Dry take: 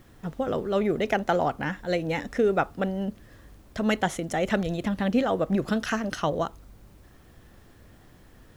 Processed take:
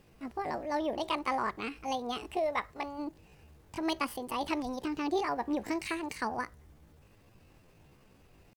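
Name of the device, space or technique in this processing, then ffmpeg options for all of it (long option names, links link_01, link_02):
chipmunk voice: -filter_complex "[0:a]asplit=3[link_01][link_02][link_03];[link_01]afade=type=out:start_time=2.39:duration=0.02[link_04];[link_02]equalizer=frequency=180:width=1.4:gain=-8,afade=type=in:start_time=2.39:duration=0.02,afade=type=out:start_time=2.98:duration=0.02[link_05];[link_03]afade=type=in:start_time=2.98:duration=0.02[link_06];[link_04][link_05][link_06]amix=inputs=3:normalize=0,asetrate=66075,aresample=44100,atempo=0.66742,volume=-7.5dB"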